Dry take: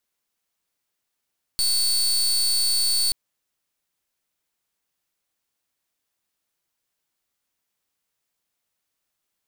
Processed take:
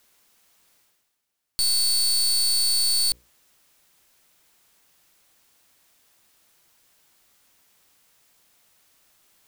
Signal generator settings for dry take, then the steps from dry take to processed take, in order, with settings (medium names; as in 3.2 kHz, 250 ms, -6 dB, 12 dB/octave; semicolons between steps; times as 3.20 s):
pulse 4.47 kHz, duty 30% -21 dBFS 1.53 s
reverse; upward compressor, threshold -46 dBFS; reverse; hum notches 60/120/180/240/300/360/420/480/540 Hz